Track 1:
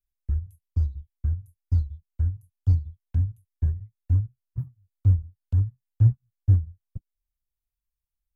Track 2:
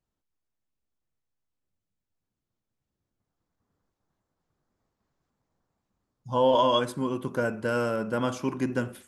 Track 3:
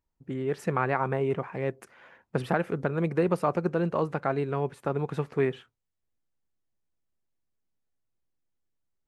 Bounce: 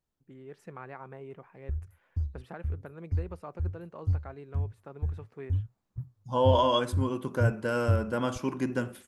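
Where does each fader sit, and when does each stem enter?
−7.5, −2.0, −17.0 decibels; 1.40, 0.00, 0.00 seconds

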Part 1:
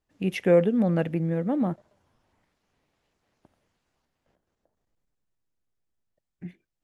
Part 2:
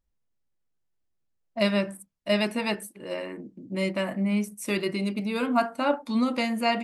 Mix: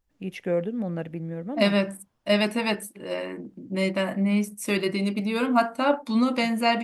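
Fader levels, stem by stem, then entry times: −6.5, +2.5 decibels; 0.00, 0.00 seconds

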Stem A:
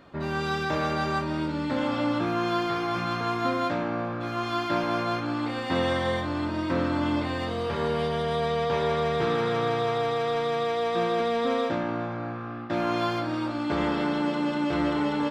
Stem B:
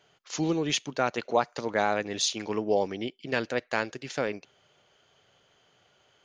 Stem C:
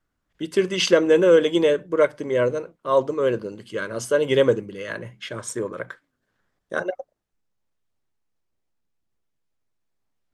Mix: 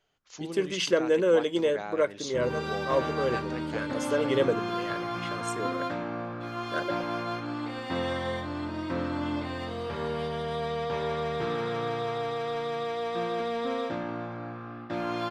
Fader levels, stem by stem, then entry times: −5.0, −11.5, −7.5 decibels; 2.20, 0.00, 0.00 seconds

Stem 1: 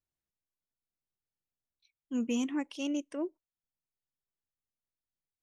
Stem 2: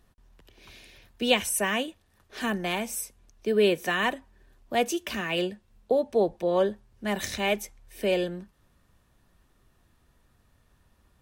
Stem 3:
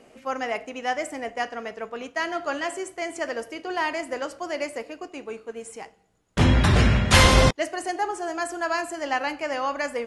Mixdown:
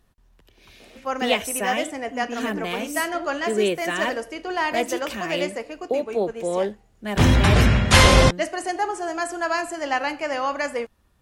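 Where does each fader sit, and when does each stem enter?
−1.5, 0.0, +2.0 decibels; 0.00, 0.00, 0.80 seconds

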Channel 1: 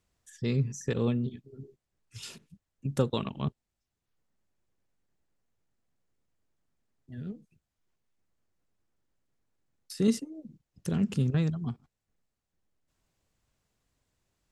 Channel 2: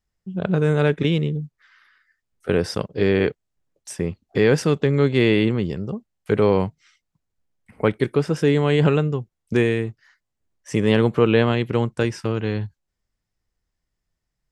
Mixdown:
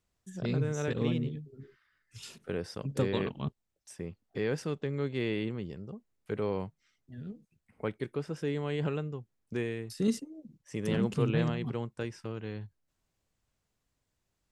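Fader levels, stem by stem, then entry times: −3.5, −15.0 decibels; 0.00, 0.00 seconds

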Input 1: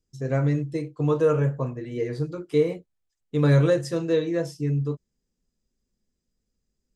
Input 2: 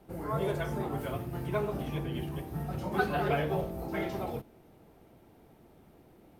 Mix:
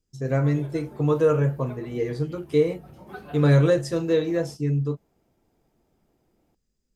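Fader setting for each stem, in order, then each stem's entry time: +1.0, −11.0 decibels; 0.00, 0.15 seconds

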